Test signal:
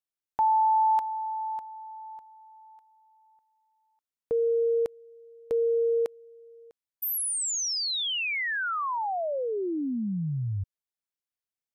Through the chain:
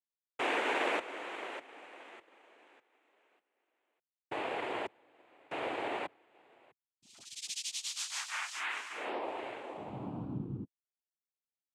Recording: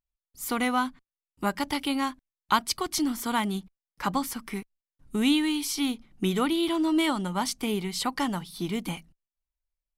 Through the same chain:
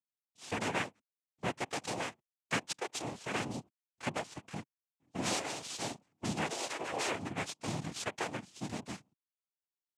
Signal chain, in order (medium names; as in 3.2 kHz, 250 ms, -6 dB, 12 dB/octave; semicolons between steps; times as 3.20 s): comb filter that takes the minimum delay 1.4 ms; noise-vocoded speech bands 4; transient shaper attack 0 dB, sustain -4 dB; trim -7.5 dB